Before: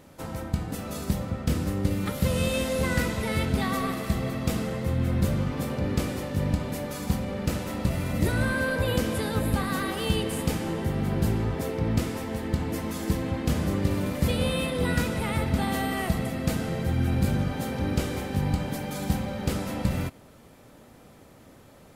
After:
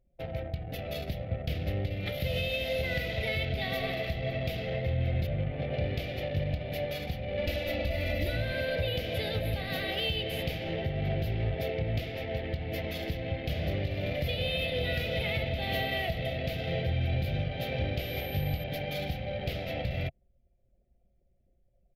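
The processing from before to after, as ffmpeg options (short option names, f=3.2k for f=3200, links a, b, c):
-filter_complex "[0:a]asplit=3[a][b][c];[a]afade=t=out:st=5.26:d=0.02[d];[b]adynamicsmooth=sensitivity=5:basefreq=2.4k,afade=t=in:st=5.26:d=0.02,afade=t=out:st=5.72:d=0.02[e];[c]afade=t=in:st=5.72:d=0.02[f];[d][e][f]amix=inputs=3:normalize=0,asettb=1/sr,asplit=3[g][h][i];[g]atrim=end=7.374[j];[h]atrim=start=7.37:end=8.37,asetpts=PTS-STARTPTS,afade=t=in:d=0.004:c=qsin,afade=t=out:st=0.996:d=0.004:c=qsin,aecho=1:1:3.5:0.94,atrim=end_sample=44100[k];[i]atrim=start=8.366[l];[j][k]acrossfade=d=0.004:c1=hsin:c2=qsin[m];[m][l]acrossfade=d=0.004:c1=qsin:c2=hsin,asplit=2[n][o];[o]afade=t=in:st=13.92:d=0.01,afade=t=out:st=14.62:d=0.01,aecho=0:1:350|700|1050|1400|1750|2100|2450|2800|3150|3500|3850|4200:0.375837|0.319462|0.271543|0.230811|0.196189|0.166761|0.141747|0.120485|0.102412|0.0870503|0.0739928|0.0628939[p];[n][p]amix=inputs=2:normalize=0,asettb=1/sr,asplit=3[q][r][s];[q]atrim=end=17.994[t];[r]atrim=start=17.99:end=18.64,asetpts=PTS-STARTPTS,afade=t=in:d=0.004:c=qsin,afade=t=out:st=0.646:d=0.004:c=qsin,aeval=exprs='val(0)+0.00891*sin(2*PI*13000*n/s)':c=same[u];[s]atrim=start=18.636[v];[t][u]acrossfade=d=0.004:c1=hsin:c2=qsin[w];[w][v]acrossfade=d=0.004:c1=qsin:c2=hsin,anlmdn=1.58,firequalizer=gain_entry='entry(140,0);entry(210,-12);entry(680,7);entry(970,-20);entry(2100,6);entry(3400,7);entry(8400,-24);entry(12000,-2)':delay=0.05:min_phase=1,alimiter=limit=-21dB:level=0:latency=1:release=265"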